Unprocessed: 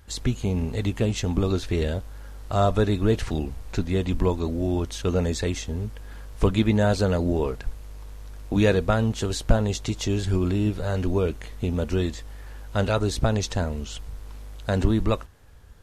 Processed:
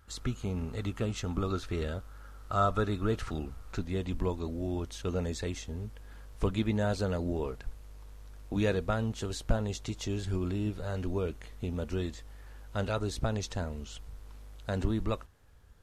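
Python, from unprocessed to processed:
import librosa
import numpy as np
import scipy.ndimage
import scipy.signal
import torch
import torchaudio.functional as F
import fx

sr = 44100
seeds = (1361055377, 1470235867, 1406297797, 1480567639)

y = fx.peak_eq(x, sr, hz=1300.0, db=fx.steps((0.0, 13.5), (3.78, 2.0)), octaves=0.31)
y = y * 10.0 ** (-9.0 / 20.0)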